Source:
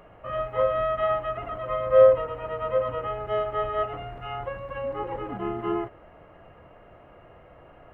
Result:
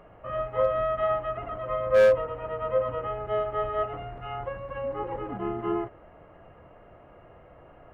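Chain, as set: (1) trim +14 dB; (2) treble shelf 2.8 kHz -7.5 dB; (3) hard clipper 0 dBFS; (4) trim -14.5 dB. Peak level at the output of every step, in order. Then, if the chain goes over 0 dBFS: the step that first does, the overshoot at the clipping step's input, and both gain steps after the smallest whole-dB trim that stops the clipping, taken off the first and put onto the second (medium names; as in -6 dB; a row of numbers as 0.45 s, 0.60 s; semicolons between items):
+7.5 dBFS, +7.0 dBFS, 0.0 dBFS, -14.5 dBFS; step 1, 7.0 dB; step 1 +7 dB, step 4 -7.5 dB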